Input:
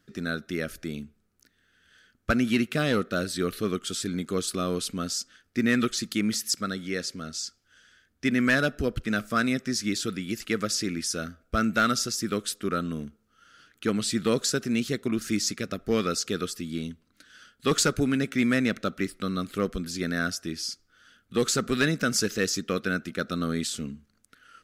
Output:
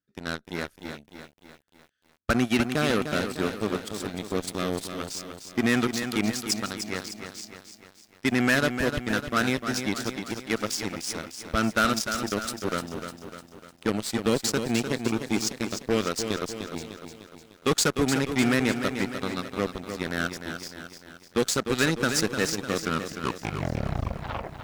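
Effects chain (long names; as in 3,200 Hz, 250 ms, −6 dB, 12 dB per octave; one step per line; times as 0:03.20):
turntable brake at the end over 1.89 s
harmonic generator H 5 −24 dB, 7 −15 dB, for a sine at −13 dBFS
feedback echo at a low word length 301 ms, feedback 55%, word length 9 bits, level −8 dB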